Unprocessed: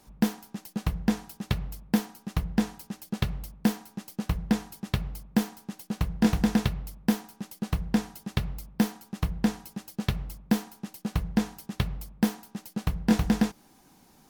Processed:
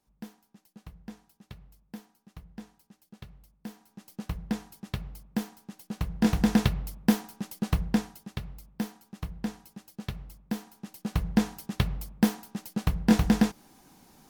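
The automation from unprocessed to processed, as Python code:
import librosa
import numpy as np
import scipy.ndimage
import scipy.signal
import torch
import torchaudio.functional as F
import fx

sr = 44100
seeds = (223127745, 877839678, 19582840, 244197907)

y = fx.gain(x, sr, db=fx.line((3.6, -18.5), (4.15, -6.0), (5.73, -6.0), (6.61, 2.0), (7.81, 2.0), (8.37, -8.0), (10.54, -8.0), (11.28, 1.5)))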